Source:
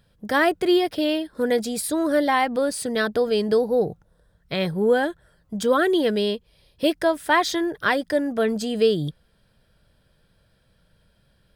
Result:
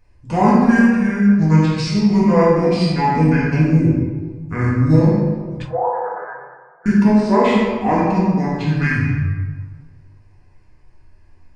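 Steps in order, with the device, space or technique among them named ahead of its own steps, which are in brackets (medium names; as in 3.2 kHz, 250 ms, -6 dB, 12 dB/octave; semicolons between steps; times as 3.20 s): monster voice (pitch shift -7.5 st; formant shift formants -4 st; bass shelf 170 Hz +4.5 dB; reverberation RT60 1.5 s, pre-delay 26 ms, DRR -2 dB); 5.62–6.86 s: elliptic band-pass 480–1400 Hz, stop band 40 dB; simulated room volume 150 m³, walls furnished, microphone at 1.9 m; trim -3 dB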